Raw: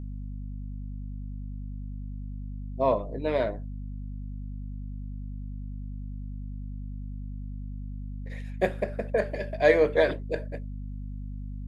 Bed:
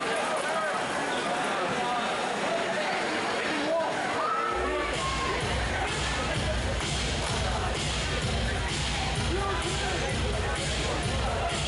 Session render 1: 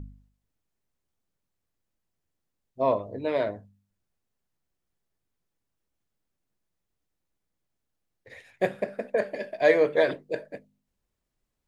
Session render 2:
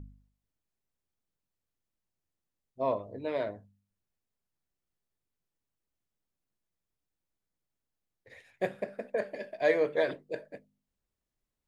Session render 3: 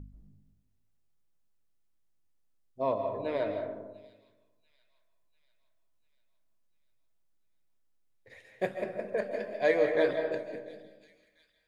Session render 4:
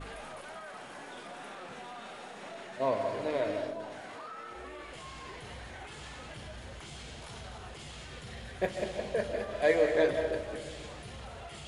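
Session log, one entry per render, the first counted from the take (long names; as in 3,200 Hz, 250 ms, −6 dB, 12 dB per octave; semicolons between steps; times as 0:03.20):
hum removal 50 Hz, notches 5
level −6 dB
delay with a high-pass on its return 694 ms, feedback 54%, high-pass 3,900 Hz, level −14 dB; comb and all-pass reverb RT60 1.2 s, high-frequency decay 0.3×, pre-delay 110 ms, DRR 5 dB
mix in bed −16.5 dB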